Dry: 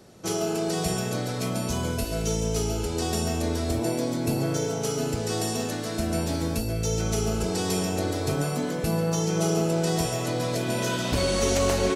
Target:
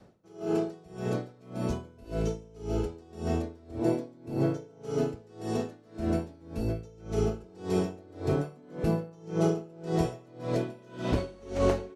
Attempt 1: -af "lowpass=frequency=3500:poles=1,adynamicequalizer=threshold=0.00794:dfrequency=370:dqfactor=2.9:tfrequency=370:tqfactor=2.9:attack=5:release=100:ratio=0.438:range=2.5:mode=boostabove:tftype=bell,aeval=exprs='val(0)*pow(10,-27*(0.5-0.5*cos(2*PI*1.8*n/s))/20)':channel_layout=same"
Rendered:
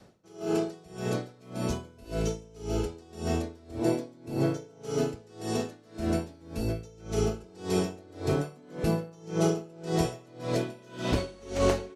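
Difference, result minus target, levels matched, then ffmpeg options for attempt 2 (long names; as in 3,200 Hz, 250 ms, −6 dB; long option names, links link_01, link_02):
4,000 Hz band +6.0 dB
-af "lowpass=frequency=1300:poles=1,adynamicequalizer=threshold=0.00794:dfrequency=370:dqfactor=2.9:tfrequency=370:tqfactor=2.9:attack=5:release=100:ratio=0.438:range=2.5:mode=boostabove:tftype=bell,aeval=exprs='val(0)*pow(10,-27*(0.5-0.5*cos(2*PI*1.8*n/s))/20)':channel_layout=same"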